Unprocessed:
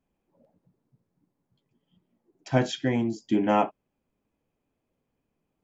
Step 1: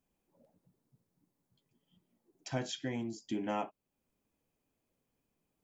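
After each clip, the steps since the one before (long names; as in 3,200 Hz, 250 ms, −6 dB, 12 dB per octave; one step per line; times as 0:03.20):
high-shelf EQ 4,100 Hz +10.5 dB
downward compressor 1.5 to 1, threshold −43 dBFS, peak gain reduction 10 dB
level −4.5 dB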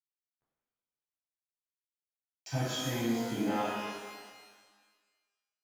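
brickwall limiter −25.5 dBFS, peak gain reduction 5 dB
dead-zone distortion −57.5 dBFS
reverb with rising layers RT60 1.5 s, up +12 semitones, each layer −8 dB, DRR −8 dB
level −2.5 dB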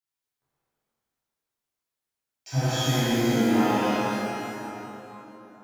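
dense smooth reverb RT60 3.8 s, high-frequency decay 0.6×, DRR −9.5 dB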